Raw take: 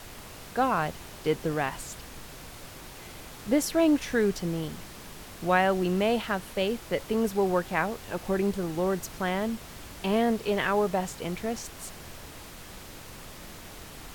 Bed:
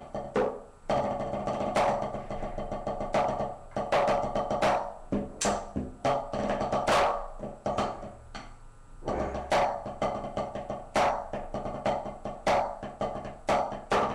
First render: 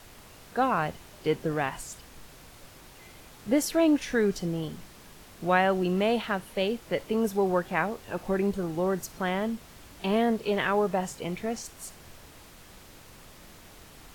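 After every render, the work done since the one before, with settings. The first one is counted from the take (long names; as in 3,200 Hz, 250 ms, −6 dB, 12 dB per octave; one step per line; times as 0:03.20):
noise reduction from a noise print 6 dB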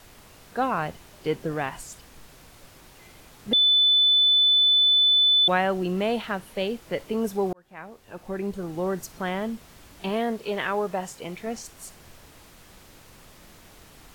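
0:03.53–0:05.48: beep over 3,500 Hz −15.5 dBFS
0:07.53–0:08.86: fade in
0:10.09–0:11.47: low-shelf EQ 250 Hz −6 dB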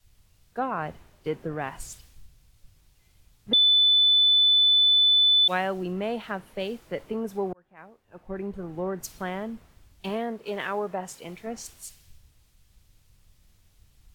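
downward compressor 2.5 to 1, threshold −29 dBFS, peak gain reduction 8 dB
multiband upward and downward expander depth 100%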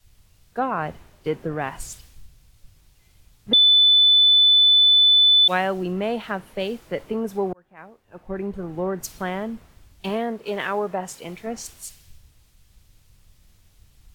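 level +4.5 dB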